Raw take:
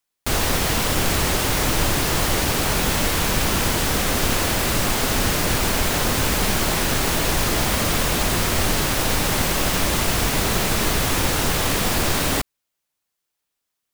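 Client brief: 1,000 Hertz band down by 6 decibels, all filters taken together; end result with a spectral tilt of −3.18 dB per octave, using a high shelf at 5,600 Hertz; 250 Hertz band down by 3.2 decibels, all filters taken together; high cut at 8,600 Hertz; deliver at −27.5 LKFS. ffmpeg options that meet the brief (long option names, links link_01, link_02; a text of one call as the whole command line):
ffmpeg -i in.wav -af "lowpass=8600,equalizer=frequency=250:width_type=o:gain=-4,equalizer=frequency=1000:width_type=o:gain=-8,highshelf=frequency=5600:gain=6,volume=-6.5dB" out.wav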